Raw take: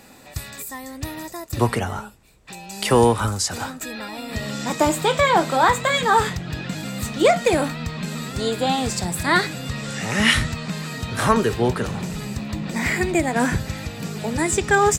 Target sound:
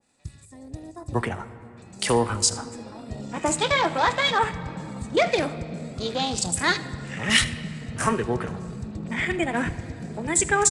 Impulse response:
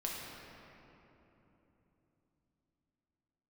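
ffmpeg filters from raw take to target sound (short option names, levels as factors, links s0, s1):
-filter_complex "[0:a]aemphasis=mode=production:type=cd,afwtdn=0.0355,atempo=1.4,aecho=1:1:80:0.112,asplit=2[s0][s1];[1:a]atrim=start_sample=2205[s2];[s1][s2]afir=irnorm=-1:irlink=0,volume=0.224[s3];[s0][s3]amix=inputs=2:normalize=0,aresample=22050,aresample=44100,adynamicequalizer=threshold=0.0398:dfrequency=1600:dqfactor=0.7:tfrequency=1600:tqfactor=0.7:attack=5:release=100:ratio=0.375:range=2:mode=boostabove:tftype=highshelf,volume=0.473"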